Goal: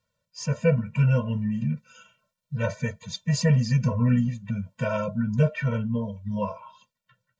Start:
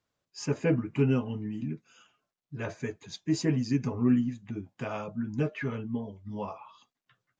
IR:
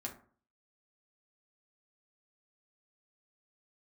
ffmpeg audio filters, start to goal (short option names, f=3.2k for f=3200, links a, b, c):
-af "dynaudnorm=f=270:g=9:m=4dB,afftfilt=real='re*eq(mod(floor(b*sr/1024/220),2),0)':imag='im*eq(mod(floor(b*sr/1024/220),2),0)':win_size=1024:overlap=0.75,volume=6.5dB"